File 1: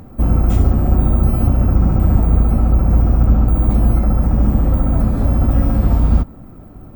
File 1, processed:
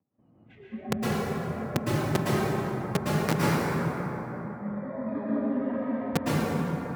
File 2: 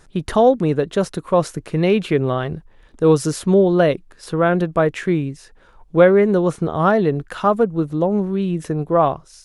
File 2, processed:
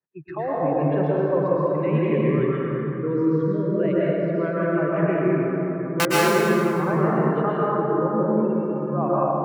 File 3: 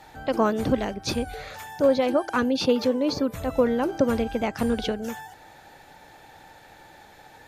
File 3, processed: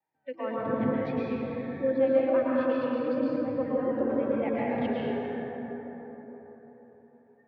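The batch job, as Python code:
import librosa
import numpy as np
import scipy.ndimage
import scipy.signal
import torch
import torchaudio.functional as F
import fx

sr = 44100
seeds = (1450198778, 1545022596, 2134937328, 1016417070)

y = scipy.signal.sosfilt(scipy.signal.butter(4, 2500.0, 'lowpass', fs=sr, output='sos'), x)
y = fx.peak_eq(y, sr, hz=1400.0, db=-6.5, octaves=0.22)
y = fx.level_steps(y, sr, step_db=9)
y = fx.noise_reduce_blind(y, sr, reduce_db=29)
y = (np.mod(10.0 ** (7.0 / 20.0) * y + 1.0, 2.0) - 1.0) / 10.0 ** (7.0 / 20.0)
y = fx.rider(y, sr, range_db=4, speed_s=0.5)
y = fx.vibrato(y, sr, rate_hz=2.6, depth_cents=74.0)
y = scipy.signal.sosfilt(scipy.signal.butter(4, 120.0, 'highpass', fs=sr, output='sos'), y)
y = fx.rev_plate(y, sr, seeds[0], rt60_s=4.4, hf_ratio=0.35, predelay_ms=100, drr_db=-8.0)
y = y * librosa.db_to_amplitude(-8.0)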